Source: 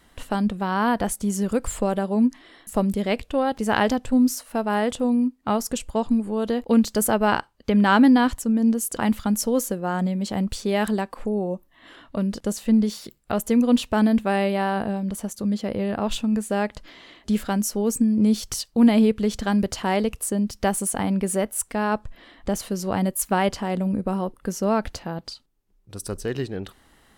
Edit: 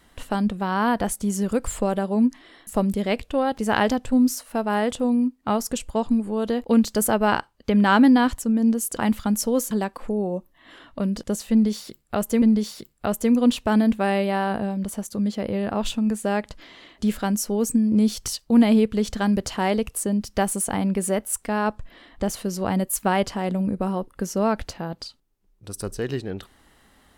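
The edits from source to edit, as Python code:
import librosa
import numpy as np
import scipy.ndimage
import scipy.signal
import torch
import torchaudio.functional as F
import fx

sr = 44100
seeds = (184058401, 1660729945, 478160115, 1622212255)

y = fx.edit(x, sr, fx.cut(start_s=9.71, length_s=1.17),
    fx.repeat(start_s=12.68, length_s=0.91, count=2), tone=tone)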